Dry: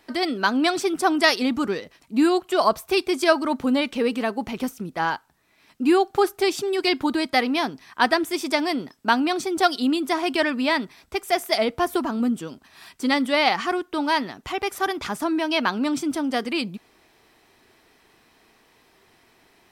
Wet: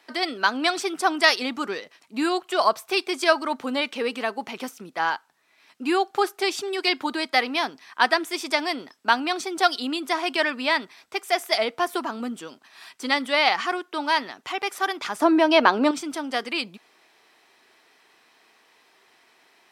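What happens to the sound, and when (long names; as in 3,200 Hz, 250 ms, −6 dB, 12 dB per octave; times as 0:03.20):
0:15.19–0:15.91: parametric band 440 Hz +12.5 dB 2.6 octaves
whole clip: meter weighting curve A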